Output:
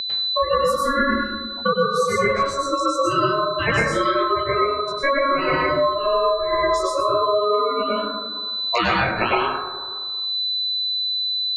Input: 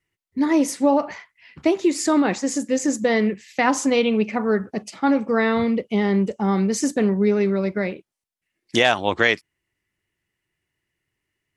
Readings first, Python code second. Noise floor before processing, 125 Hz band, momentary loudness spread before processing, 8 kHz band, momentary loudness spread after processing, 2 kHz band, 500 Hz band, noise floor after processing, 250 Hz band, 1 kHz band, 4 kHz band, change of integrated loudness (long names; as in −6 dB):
−82 dBFS, −2.0 dB, 6 LU, −6.5 dB, 5 LU, +2.0 dB, +1.5 dB, −30 dBFS, −9.0 dB, +7.0 dB, +10.0 dB, +0.5 dB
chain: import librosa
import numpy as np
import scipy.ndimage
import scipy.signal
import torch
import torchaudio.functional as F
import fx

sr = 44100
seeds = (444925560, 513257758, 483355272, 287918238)

y = fx.bin_expand(x, sr, power=2.0)
y = fx.chorus_voices(y, sr, voices=4, hz=1.2, base_ms=18, depth_ms=3.5, mix_pct=55)
y = fx.spec_gate(y, sr, threshold_db=-30, keep='strong')
y = fx.peak_eq(y, sr, hz=1300.0, db=9.5, octaves=0.31)
y = y * np.sin(2.0 * np.pi * 830.0 * np.arange(len(y)) / sr)
y = fx.hum_notches(y, sr, base_hz=60, count=2)
y = y + 10.0 ** (-42.0 / 20.0) * np.sin(2.0 * np.pi * 4000.0 * np.arange(len(y)) / sr)
y = fx.rev_plate(y, sr, seeds[0], rt60_s=0.83, hf_ratio=0.35, predelay_ms=90, drr_db=-7.0)
y = fx.band_squash(y, sr, depth_pct=100)
y = y * 10.0 ** (1.0 / 20.0)